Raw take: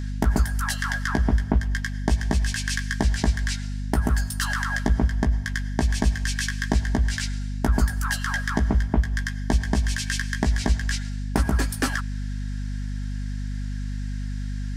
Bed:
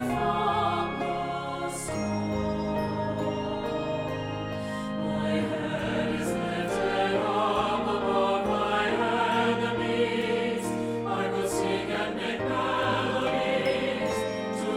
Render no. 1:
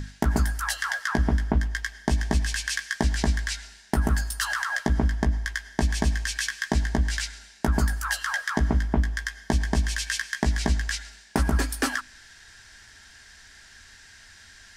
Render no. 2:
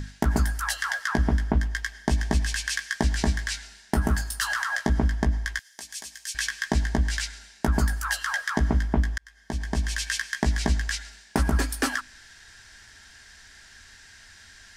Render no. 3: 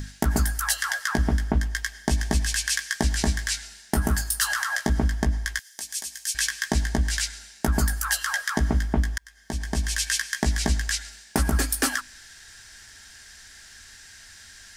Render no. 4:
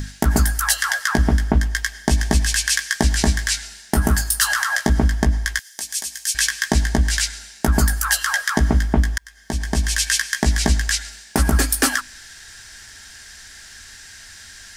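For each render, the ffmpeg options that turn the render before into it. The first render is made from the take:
-af "bandreject=f=50:t=h:w=6,bandreject=f=100:t=h:w=6,bandreject=f=150:t=h:w=6,bandreject=f=200:t=h:w=6,bandreject=f=250:t=h:w=6,bandreject=f=300:t=h:w=6"
-filter_complex "[0:a]asettb=1/sr,asplit=3[a][b][c];[a]atrim=end=3.174[d];[b]atrim=start=3.17:end=4.9,asetpts=PTS-STARTPTS,afade=t=in:d=0.004:c=qsin,afade=t=out:st=1.726:d=0.004:c=qsin,asplit=2[e][f];[f]adelay=26,volume=-11.5dB[g];[e][g]amix=inputs=2:normalize=0,atrim=end_sample=76293[h];[c]atrim=start=4.896[i];[d][h]acrossfade=d=0.004:c1=hsin:c2=qsin[j];[j][i]acrossfade=d=0.004:c1=qsin:c2=hsin,asettb=1/sr,asplit=3[k][l][m];[k]atrim=end=5.594[n];[l]atrim=start=5.59:end=6.35,asetpts=PTS-STARTPTS,afade=t=in:d=0.004:c=qsin,afade=t=out:st=0.756:d=0.004:c=qsin,aderivative[o];[m]atrim=start=6.346[p];[n][o]acrossfade=d=0.004:c1=hsin:c2=qsin[q];[q][p]acrossfade=d=0.004:c1=qsin:c2=hsin,asplit=2[r][s];[r]atrim=end=9.18,asetpts=PTS-STARTPTS,afade=t=out:st=9.176:d=0.004:c=hsin[t];[s]atrim=start=9.18,asetpts=PTS-STARTPTS,afade=t=in:d=0.82[u];[t][u]concat=n=2:v=0:a=1"
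-af "highshelf=f=6.5k:g=11.5,bandreject=f=980:w=23"
-af "volume=6dB,alimiter=limit=-3dB:level=0:latency=1"

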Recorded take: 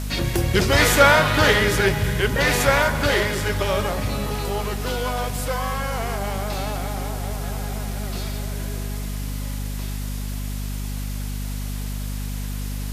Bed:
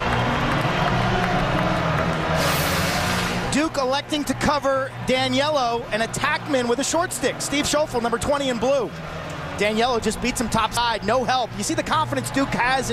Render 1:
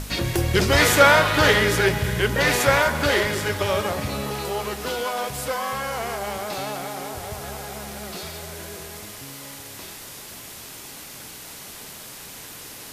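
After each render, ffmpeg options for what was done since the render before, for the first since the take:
-af "bandreject=f=50:t=h:w=6,bandreject=f=100:t=h:w=6,bandreject=f=150:t=h:w=6,bandreject=f=200:t=h:w=6,bandreject=f=250:t=h:w=6"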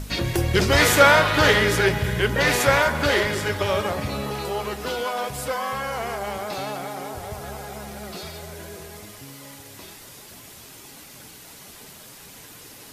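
-af "afftdn=nr=6:nf=-40"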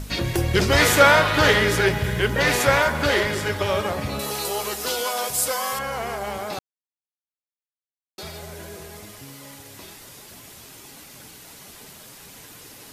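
-filter_complex "[0:a]asettb=1/sr,asplit=3[a][b][c];[a]atrim=end=1.614[d];[b]atrim=start=1.61:end=2.96,asetpts=PTS-STARTPTS,afade=t=in:d=0.004:c=qsin,afade=t=out:st=1.346:d=0.004:c=qsin,acrusher=bits=8:mix=0:aa=0.5[e];[c]atrim=start=2.956[f];[d][e]acrossfade=d=0.004:c1=hsin:c2=qsin[g];[g][f]acrossfade=d=0.004:c1=qsin:c2=hsin,asettb=1/sr,asplit=3[h][i][j];[h]atrim=end=4.194[k];[i]atrim=start=4.19:end=5.79,asetpts=PTS-STARTPTS,afade=t=in:d=0.004:c=qsin,afade=t=out:st=1.596:d=0.004:c=qsin,bass=f=250:g=-7,treble=f=4k:g=13[l];[j]atrim=start=5.786[m];[k][l]acrossfade=d=0.004:c1=hsin:c2=qsin[n];[n][m]acrossfade=d=0.004:c1=qsin:c2=hsin,asplit=3[o][p][q];[o]atrim=end=6.59,asetpts=PTS-STARTPTS,afade=t=out:st=6.586:d=0.004:c=hsin[r];[p]atrim=start=6.59:end=8.18,asetpts=PTS-STARTPTS,volume=0[s];[q]atrim=start=8.18,asetpts=PTS-STARTPTS,afade=t=in:d=0.004:c=hsin[t];[r][s][t]concat=n=3:v=0:a=1"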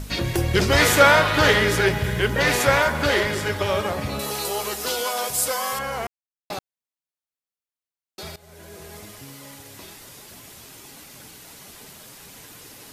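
-filter_complex "[0:a]asplit=4[a][b][c][d];[a]atrim=end=6.07,asetpts=PTS-STARTPTS,afade=t=out:st=6.066:d=0.004:c=hsin[e];[b]atrim=start=6.07:end=6.5,asetpts=PTS-STARTPTS,volume=0[f];[c]atrim=start=6.5:end=8.36,asetpts=PTS-STARTPTS,afade=t=in:d=0.004:c=hsin,afade=t=out:st=1.856:d=0.004:c=hsin:silence=0.112202[g];[d]atrim=start=8.36,asetpts=PTS-STARTPTS,afade=t=in:d=0.59:silence=0.112202[h];[e][f][g][h]concat=n=4:v=0:a=1"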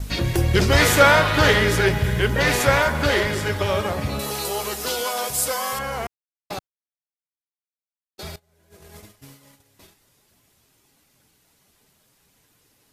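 -af "agate=range=-19dB:threshold=-39dB:ratio=16:detection=peak,lowshelf=f=130:g=6"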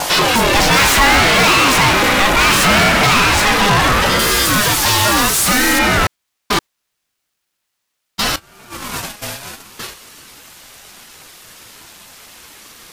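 -filter_complex "[0:a]asplit=2[a][b];[b]highpass=f=720:p=1,volume=35dB,asoftclip=type=tanh:threshold=-2dB[c];[a][c]amix=inputs=2:normalize=0,lowpass=f=6.7k:p=1,volume=-6dB,aeval=exprs='val(0)*sin(2*PI*590*n/s+590*0.35/0.7*sin(2*PI*0.7*n/s))':c=same"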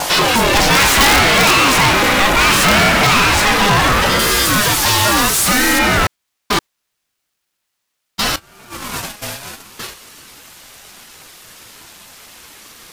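-af "acrusher=bits=6:mode=log:mix=0:aa=0.000001,aeval=exprs='(mod(1.58*val(0)+1,2)-1)/1.58':c=same"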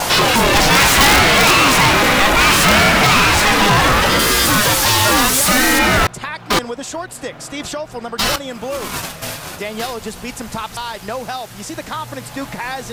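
-filter_complex "[1:a]volume=-5dB[a];[0:a][a]amix=inputs=2:normalize=0"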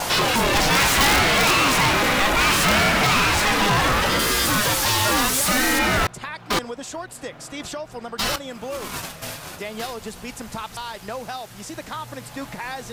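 -af "volume=-6.5dB"

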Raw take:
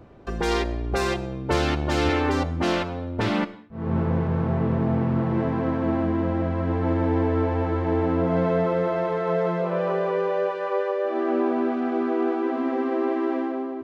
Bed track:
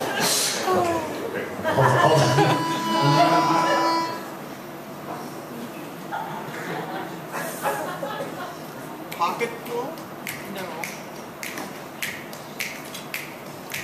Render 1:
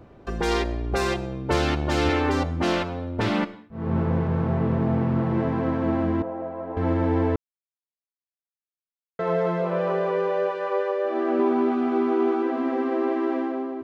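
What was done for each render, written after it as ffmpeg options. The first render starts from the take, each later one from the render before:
-filter_complex "[0:a]asettb=1/sr,asplit=3[a][b][c];[a]atrim=end=6.224[d];[b]atrim=start=6.22:end=6.77,asetpts=PTS-STARTPTS,afade=t=in:d=0.004:c=qsin,afade=t=out:st=0.546:d=0.004:c=qsin,bandpass=f=670:t=q:w=1.6[e];[c]atrim=start=6.766[f];[d][e]acrossfade=d=0.004:c1=hsin:c2=qsin[g];[g][f]acrossfade=d=0.004:c1=qsin:c2=hsin,asettb=1/sr,asplit=3[h][i][j];[h]atrim=end=11.384[k];[i]atrim=start=11.38:end=12.43,asetpts=PTS-STARTPTS,afade=t=in:d=0.004:c=qsin,afade=t=out:st=1.046:d=0.004:c=qsin,asplit=2[l][m];[m]adelay=13,volume=-4.5dB[n];[l][n]amix=inputs=2:normalize=0,atrim=end_sample=46305[o];[j]atrim=start=12.426[p];[k][o]acrossfade=d=0.004:c1=hsin:c2=qsin[q];[q][p]acrossfade=d=0.004:c1=qsin:c2=hsin,asplit=3[r][s][t];[r]atrim=end=7.36,asetpts=PTS-STARTPTS,afade=t=out:st=7.356:d=0.004:c=hsin[u];[s]atrim=start=7.36:end=9.19,asetpts=PTS-STARTPTS,volume=0[v];[t]atrim=start=9.19,asetpts=PTS-STARTPTS,afade=t=in:d=0.004:c=hsin[w];[u][v][w]concat=n=3:v=0:a=1"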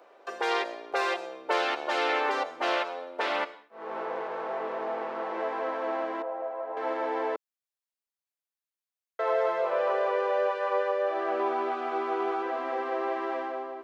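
-filter_complex "[0:a]highpass=f=490:w=0.5412,highpass=f=490:w=1.3066,acrossover=split=4100[a][b];[b]acompressor=threshold=-49dB:ratio=4:attack=1:release=60[c];[a][c]amix=inputs=2:normalize=0"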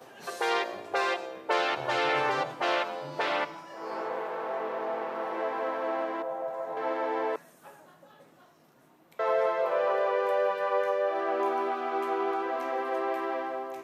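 -filter_complex "[1:a]volume=-25.5dB[a];[0:a][a]amix=inputs=2:normalize=0"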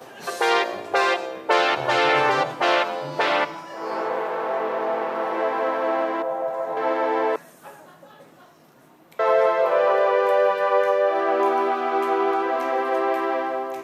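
-af "volume=8dB"

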